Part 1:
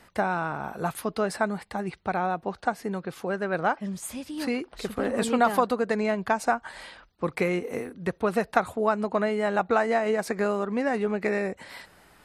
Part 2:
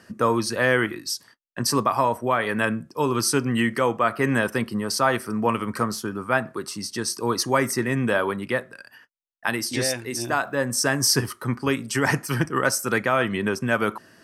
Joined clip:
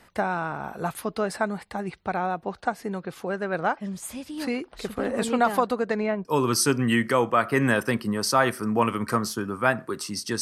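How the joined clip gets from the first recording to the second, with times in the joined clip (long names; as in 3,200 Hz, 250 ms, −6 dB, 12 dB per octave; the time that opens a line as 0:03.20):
part 1
0:05.79–0:06.25: low-pass filter 11,000 Hz → 1,400 Hz
0:06.25: continue with part 2 from 0:02.92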